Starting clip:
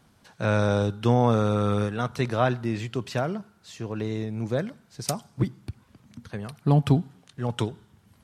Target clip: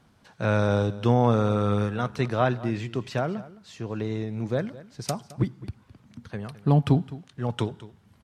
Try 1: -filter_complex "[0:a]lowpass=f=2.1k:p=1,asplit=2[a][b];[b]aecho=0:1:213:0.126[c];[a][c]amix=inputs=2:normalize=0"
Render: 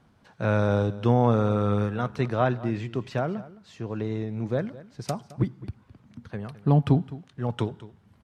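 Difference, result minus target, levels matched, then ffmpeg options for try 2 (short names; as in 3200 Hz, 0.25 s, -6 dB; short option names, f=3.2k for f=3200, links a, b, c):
4000 Hz band -4.0 dB
-filter_complex "[0:a]lowpass=f=5k:p=1,asplit=2[a][b];[b]aecho=0:1:213:0.126[c];[a][c]amix=inputs=2:normalize=0"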